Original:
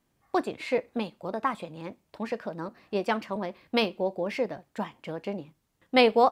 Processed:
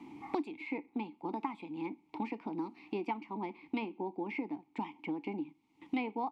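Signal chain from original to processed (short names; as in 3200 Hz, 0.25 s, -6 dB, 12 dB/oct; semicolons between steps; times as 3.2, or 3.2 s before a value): vowel filter u; three-band squash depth 100%; gain +5 dB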